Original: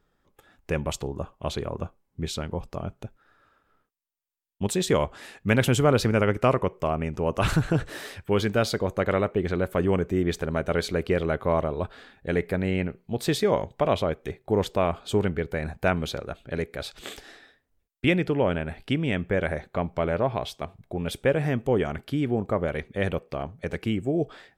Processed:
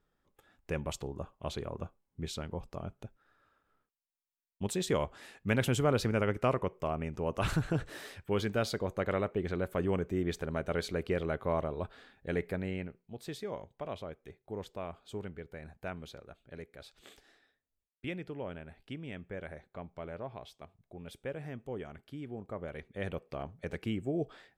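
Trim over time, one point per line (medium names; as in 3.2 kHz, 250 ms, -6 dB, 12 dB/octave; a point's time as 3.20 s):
12.47 s -8 dB
13.20 s -17 dB
22.33 s -17 dB
23.40 s -8 dB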